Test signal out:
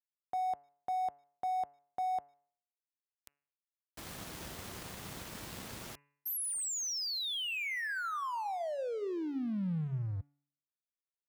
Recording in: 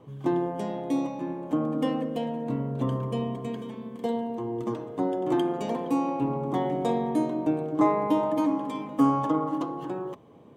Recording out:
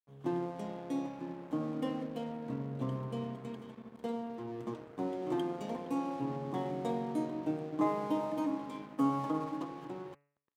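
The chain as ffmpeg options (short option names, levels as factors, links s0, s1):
-filter_complex "[0:a]adynamicequalizer=threshold=0.00562:dfrequency=170:dqfactor=1.7:tfrequency=170:tqfactor=1.7:attack=5:release=100:ratio=0.375:range=1.5:mode=boostabove:tftype=bell,asplit=2[s0][s1];[s1]adelay=152,lowpass=f=2400:p=1,volume=0.0708,asplit=2[s2][s3];[s3]adelay=152,lowpass=f=2400:p=1,volume=0.3[s4];[s0][s2][s4]amix=inputs=3:normalize=0,aeval=exprs='sgn(val(0))*max(abs(val(0))-0.0075,0)':c=same,highpass=61,bandreject=f=143:t=h:w=4,bandreject=f=286:t=h:w=4,bandreject=f=429:t=h:w=4,bandreject=f=572:t=h:w=4,bandreject=f=715:t=h:w=4,bandreject=f=858:t=h:w=4,bandreject=f=1001:t=h:w=4,bandreject=f=1144:t=h:w=4,bandreject=f=1287:t=h:w=4,bandreject=f=1430:t=h:w=4,bandreject=f=1573:t=h:w=4,bandreject=f=1716:t=h:w=4,bandreject=f=1859:t=h:w=4,bandreject=f=2002:t=h:w=4,bandreject=f=2145:t=h:w=4,bandreject=f=2288:t=h:w=4,bandreject=f=2431:t=h:w=4,bandreject=f=2574:t=h:w=4,bandreject=f=2717:t=h:w=4,bandreject=f=2860:t=h:w=4,volume=0.376"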